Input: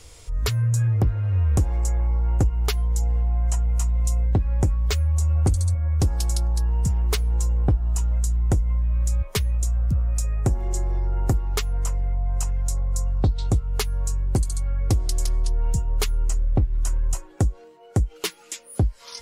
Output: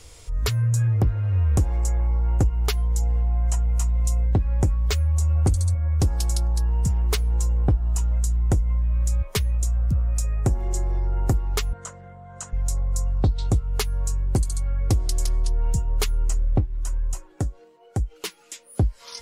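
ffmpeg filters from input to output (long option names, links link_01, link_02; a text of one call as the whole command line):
ffmpeg -i in.wav -filter_complex "[0:a]asettb=1/sr,asplit=3[link_01][link_02][link_03];[link_01]atrim=end=11.734[link_04];[link_02]atrim=start=11.73:end=12.53,asetpts=PTS-STARTPTS,afade=type=in:duration=0.004:curve=qsin,afade=type=out:start_time=0.796:duration=0.004:curve=qsin,highpass=frequency=120:width=0.5412,highpass=frequency=120:width=1.3066,equalizer=frequency=140:width_type=q:width=4:gain=-7,equalizer=frequency=370:width_type=q:width=4:gain=-7,equalizer=frequency=840:width_type=q:width=4:gain=-7,equalizer=frequency=1500:width_type=q:width=4:gain=5,equalizer=frequency=2500:width_type=q:width=4:gain=-8,equalizer=frequency=5100:width_type=q:width=4:gain=-8,lowpass=frequency=8100:width=0.5412,lowpass=frequency=8100:width=1.3066[link_05];[link_03]atrim=start=12.526[link_06];[link_04][link_05]acrossfade=duration=0.004:curve1=hsin:curve2=qsin[link_07];[link_07][link_06]acrossfade=duration=0.004:curve1=qsin:curve2=hsin,asplit=3[link_08][link_09][link_10];[link_08]afade=type=out:start_time=16.6:duration=0.02[link_11];[link_09]flanger=delay=1.2:depth=6:regen=73:speed=1:shape=sinusoidal,afade=type=in:start_time=16.6:duration=0.02,afade=type=out:start_time=18.77:duration=0.02[link_12];[link_10]afade=type=in:start_time=18.77:duration=0.02[link_13];[link_11][link_12][link_13]amix=inputs=3:normalize=0" out.wav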